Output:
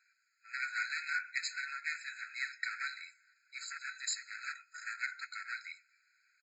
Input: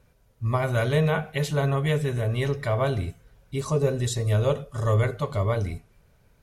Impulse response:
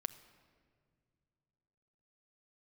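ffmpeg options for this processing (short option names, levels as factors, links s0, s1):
-af "aresample=16000,asoftclip=type=hard:threshold=0.0668,aresample=44100,afftfilt=real='re*eq(mod(floor(b*sr/1024/1300),2),1)':imag='im*eq(mod(floor(b*sr/1024/1300),2),1)':win_size=1024:overlap=0.75,volume=1.12"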